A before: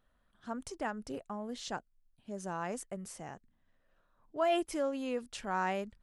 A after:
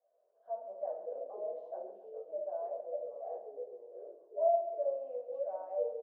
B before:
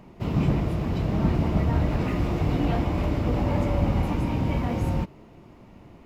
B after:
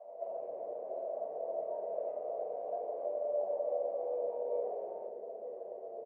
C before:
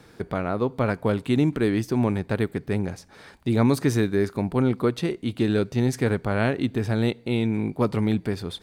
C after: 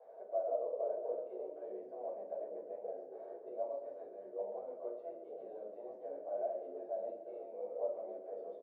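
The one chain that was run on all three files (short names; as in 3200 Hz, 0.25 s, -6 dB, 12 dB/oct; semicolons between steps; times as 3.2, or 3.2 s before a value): tilt +3.5 dB/oct; compressor 4:1, threshold -44 dBFS; hard clip -33.5 dBFS; Butterworth band-pass 610 Hz, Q 4.5; echoes that change speed 92 ms, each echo -3 st, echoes 2, each echo -6 dB; feedback echo 0.134 s, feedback 53%, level -12 dB; shoebox room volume 230 m³, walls furnished, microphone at 5 m; gain +4.5 dB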